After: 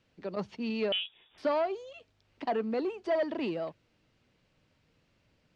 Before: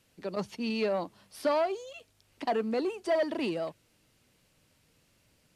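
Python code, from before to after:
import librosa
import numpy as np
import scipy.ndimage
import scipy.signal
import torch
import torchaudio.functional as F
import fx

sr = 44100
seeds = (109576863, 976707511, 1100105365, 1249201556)

y = fx.air_absorb(x, sr, metres=150.0)
y = fx.freq_invert(y, sr, carrier_hz=3600, at=(0.92, 1.38))
y = y * librosa.db_to_amplitude(-1.0)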